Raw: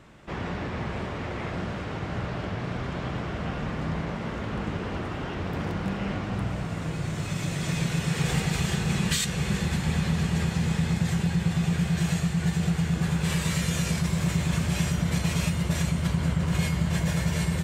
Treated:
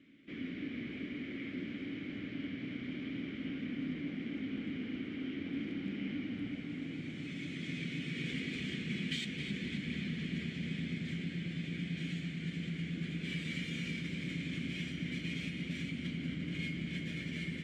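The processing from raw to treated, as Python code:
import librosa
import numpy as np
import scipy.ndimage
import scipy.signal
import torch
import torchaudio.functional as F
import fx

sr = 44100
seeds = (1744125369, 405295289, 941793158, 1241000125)

y = fx.vowel_filter(x, sr, vowel='i')
y = fx.echo_tape(y, sr, ms=267, feedback_pct=81, wet_db=-6.5, lp_hz=4900.0, drive_db=34.0, wow_cents=38)
y = F.gain(torch.from_numpy(y), 3.0).numpy()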